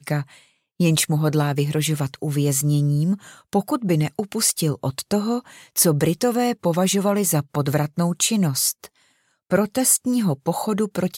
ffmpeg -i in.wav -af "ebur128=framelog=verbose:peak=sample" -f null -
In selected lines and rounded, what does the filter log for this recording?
Integrated loudness:
  I:         -21.1 LUFS
  Threshold: -31.4 LUFS
Loudness range:
  LRA:         1.4 LU
  Threshold: -41.3 LUFS
  LRA low:   -22.0 LUFS
  LRA high:  -20.5 LUFS
Sample peak:
  Peak:       -4.6 dBFS